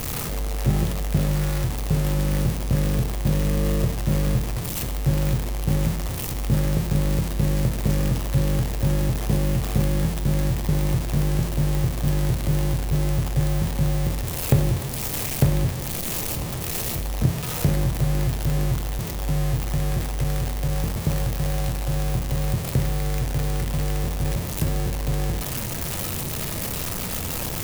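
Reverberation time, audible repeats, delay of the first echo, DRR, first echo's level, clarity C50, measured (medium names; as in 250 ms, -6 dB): 0.90 s, no echo, no echo, 8.0 dB, no echo, 11.0 dB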